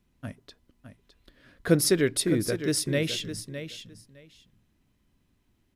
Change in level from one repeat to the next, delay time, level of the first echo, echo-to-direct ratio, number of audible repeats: −15.5 dB, 610 ms, −10.5 dB, −10.5 dB, 2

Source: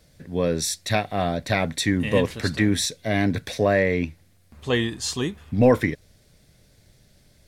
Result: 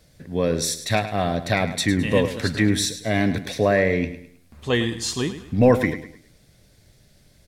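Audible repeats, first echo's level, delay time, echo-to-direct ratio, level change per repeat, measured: 3, −12.0 dB, 105 ms, −11.5 dB, −9.0 dB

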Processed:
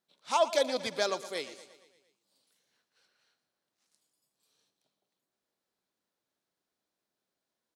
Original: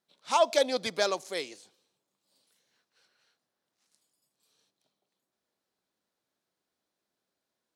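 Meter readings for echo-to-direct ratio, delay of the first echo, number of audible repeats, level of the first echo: −13.0 dB, 116 ms, 5, −15.0 dB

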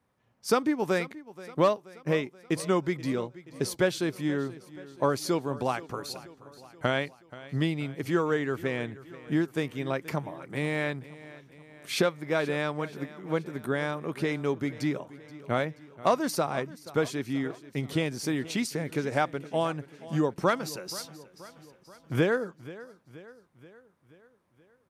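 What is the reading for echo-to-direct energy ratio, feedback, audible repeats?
−16.5 dB, 56%, 4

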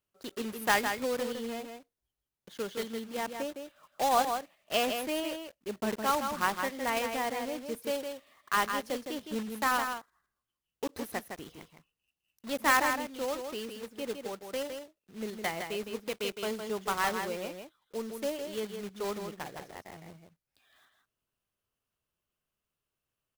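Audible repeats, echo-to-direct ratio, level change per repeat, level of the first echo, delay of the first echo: 1, −6.5 dB, repeats not evenly spaced, −6.5 dB, 161 ms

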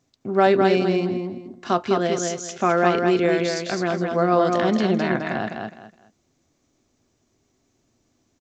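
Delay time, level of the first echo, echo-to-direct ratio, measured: 208 ms, −4.0 dB, −3.5 dB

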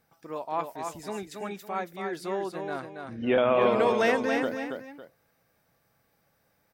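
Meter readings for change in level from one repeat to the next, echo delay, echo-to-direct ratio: −10.0 dB, 278 ms, −5.0 dB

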